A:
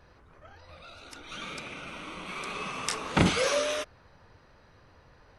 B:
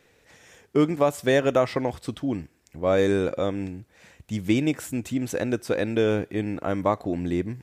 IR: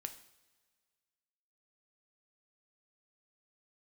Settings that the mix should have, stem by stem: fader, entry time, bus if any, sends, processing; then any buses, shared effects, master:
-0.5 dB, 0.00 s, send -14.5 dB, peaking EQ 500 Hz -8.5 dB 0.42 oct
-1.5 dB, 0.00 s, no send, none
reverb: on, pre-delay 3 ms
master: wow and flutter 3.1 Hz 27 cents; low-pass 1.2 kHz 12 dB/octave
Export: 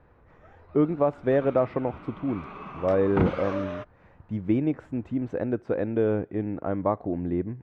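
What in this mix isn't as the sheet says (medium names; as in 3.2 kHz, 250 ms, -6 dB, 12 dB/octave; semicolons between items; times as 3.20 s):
stem A: send -14.5 dB -> -21 dB; master: missing wow and flutter 3.1 Hz 27 cents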